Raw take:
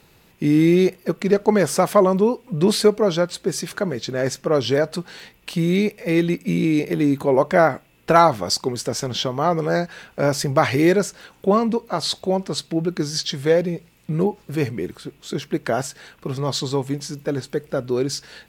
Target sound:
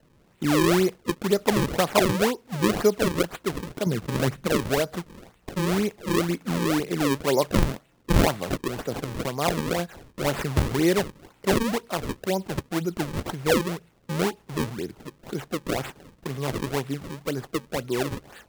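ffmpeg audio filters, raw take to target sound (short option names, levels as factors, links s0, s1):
-filter_complex "[0:a]asettb=1/sr,asplit=3[s0][s1][s2];[s0]atrim=end=3.864[s3];[s1]atrim=start=3.86:end=4.47,asetpts=PTS-STARTPTS,afade=t=in:d=0.004:c=qsin,afade=t=out:st=0.606:d=0.004:c=qsin,bass=f=250:g=12,treble=f=4000:g=-11[s4];[s2]atrim=start=4.466[s5];[s3][s4]acrossfade=d=0.004:c1=hsin:c2=qsin[s6];[s6][s5]acrossfade=d=0.004:c1=qsin:c2=hsin,acrossover=split=120|4800[s7][s8][s9];[s7]asoftclip=type=hard:threshold=0.0178[s10];[s10][s8][s9]amix=inputs=3:normalize=0,acrusher=samples=36:mix=1:aa=0.000001:lfo=1:lforange=57.6:lforate=2,volume=0.562"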